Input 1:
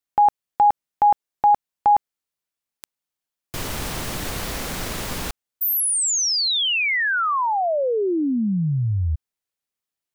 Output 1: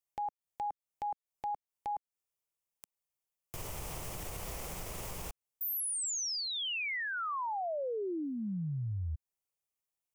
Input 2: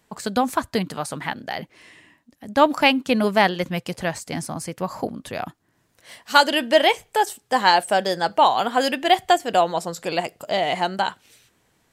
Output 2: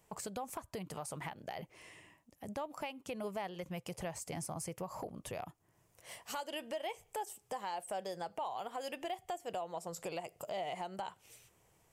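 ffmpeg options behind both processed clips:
-af "equalizer=f=250:t=o:w=0.67:g=-11,equalizer=f=1600:t=o:w=0.67:g=-9,equalizer=f=4000:t=o:w=0.67:g=-10,acompressor=threshold=0.0282:ratio=10:attack=0.3:release=347:knee=6:detection=peak,volume=0.75"

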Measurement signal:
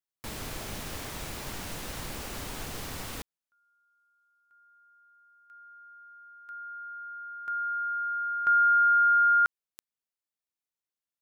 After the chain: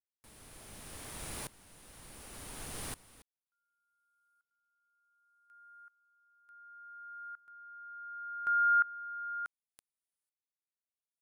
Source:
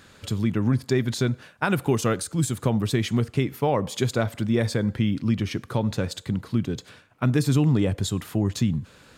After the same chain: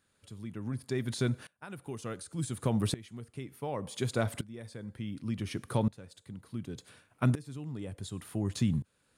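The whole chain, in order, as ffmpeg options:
-filter_complex "[0:a]equalizer=f=9600:w=2.8:g=14.5,acrossover=split=6300[s0][s1];[s1]acompressor=threshold=0.0141:ratio=4:attack=1:release=60[s2];[s0][s2]amix=inputs=2:normalize=0,aeval=exprs='val(0)*pow(10,-22*if(lt(mod(-0.68*n/s,1),2*abs(-0.68)/1000),1-mod(-0.68*n/s,1)/(2*abs(-0.68)/1000),(mod(-0.68*n/s,1)-2*abs(-0.68)/1000)/(1-2*abs(-0.68)/1000))/20)':c=same,volume=0.708"

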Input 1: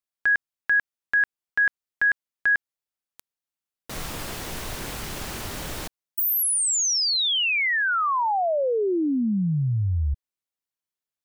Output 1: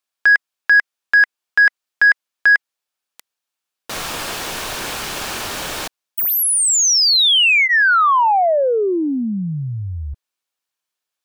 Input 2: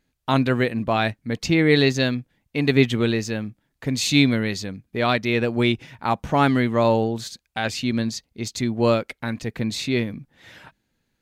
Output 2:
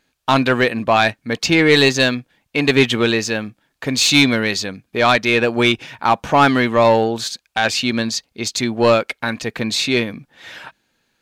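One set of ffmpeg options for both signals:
-filter_complex "[0:a]bandreject=f=2000:w=14,asplit=2[s0][s1];[s1]highpass=f=720:p=1,volume=5.62,asoftclip=type=tanh:threshold=0.75[s2];[s0][s2]amix=inputs=2:normalize=0,lowpass=f=6700:p=1,volume=0.501,volume=1.19"

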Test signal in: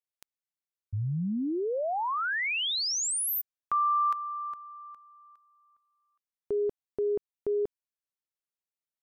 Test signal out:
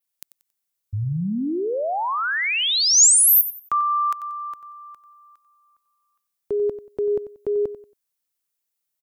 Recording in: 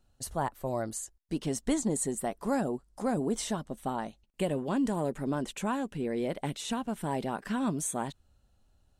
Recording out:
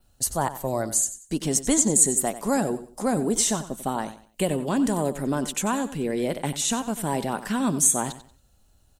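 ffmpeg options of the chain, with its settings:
-filter_complex "[0:a]adynamicequalizer=threshold=0.00251:dfrequency=6800:dqfactor=3.1:tfrequency=6800:tqfactor=3.1:attack=5:release=100:ratio=0.375:range=3.5:mode=boostabove:tftype=bell,acrossover=split=380[s0][s1];[s1]crystalizer=i=1.5:c=0[s2];[s0][s2]amix=inputs=2:normalize=0,aecho=1:1:92|184|276:0.211|0.0592|0.0166,volume=1.88"

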